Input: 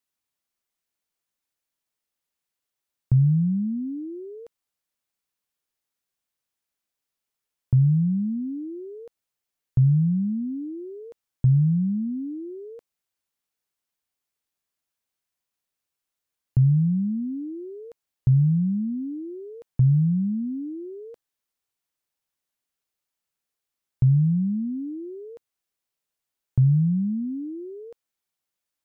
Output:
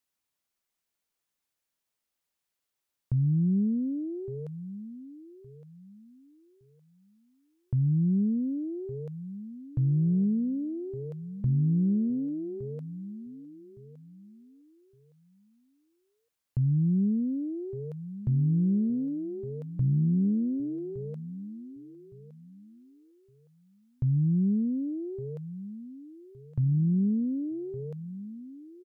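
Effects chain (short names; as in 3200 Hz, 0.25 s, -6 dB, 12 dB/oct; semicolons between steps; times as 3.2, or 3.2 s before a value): limiter -21 dBFS, peak gain reduction 9 dB; feedback echo 1.164 s, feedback 26%, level -14.5 dB; Doppler distortion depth 0.19 ms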